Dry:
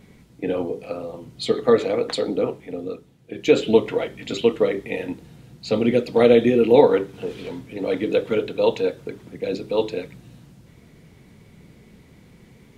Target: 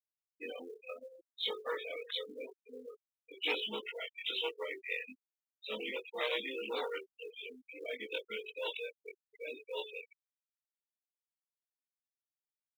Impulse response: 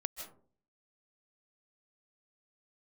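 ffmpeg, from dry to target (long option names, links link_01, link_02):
-filter_complex "[0:a]afftfilt=real='re':imag='-im':win_size=2048:overlap=0.75,asplit=2[link_01][link_02];[link_02]acompressor=threshold=-34dB:ratio=12,volume=-0.5dB[link_03];[link_01][link_03]amix=inputs=2:normalize=0,aresample=8000,aresample=44100,adynamicequalizer=threshold=0.0251:dfrequency=560:dqfactor=0.78:tfrequency=560:tqfactor=0.78:attack=5:release=100:ratio=0.375:range=3:mode=cutabove:tftype=bell,aeval=exprs='clip(val(0),-1,0.0944)':channel_layout=same,aderivative,afftfilt=real='re*gte(hypot(re,im),0.00794)':imag='im*gte(hypot(re,im),0.00794)':win_size=1024:overlap=0.75,acrusher=bits=8:mode=log:mix=0:aa=0.000001,volume=7.5dB"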